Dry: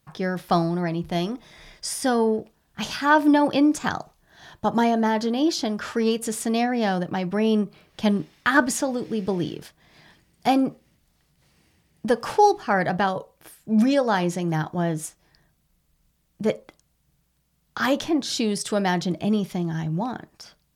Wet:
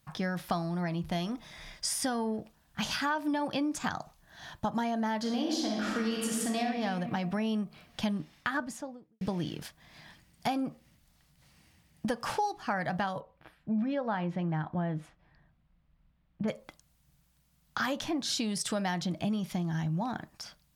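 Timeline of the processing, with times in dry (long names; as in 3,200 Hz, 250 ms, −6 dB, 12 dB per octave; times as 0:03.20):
0:05.20–0:06.64: thrown reverb, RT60 1.6 s, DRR −1.5 dB
0:08.10–0:09.21: fade out and dull
0:13.20–0:16.48: high-frequency loss of the air 400 metres
whole clip: parametric band 400 Hz −9.5 dB 0.64 octaves; downward compressor 5 to 1, threshold −29 dBFS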